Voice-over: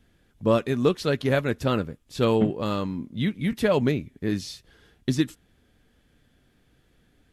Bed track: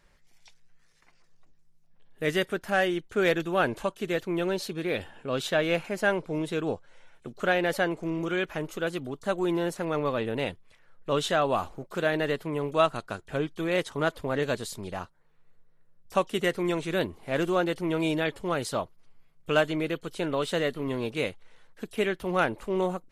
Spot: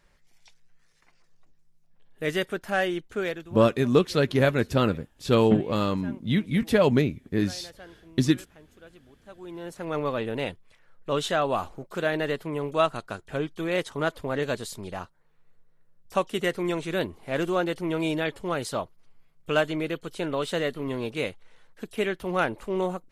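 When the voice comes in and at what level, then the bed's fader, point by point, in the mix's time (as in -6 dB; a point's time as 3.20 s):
3.10 s, +1.5 dB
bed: 3.10 s -0.5 dB
3.72 s -20.5 dB
9.25 s -20.5 dB
9.96 s 0 dB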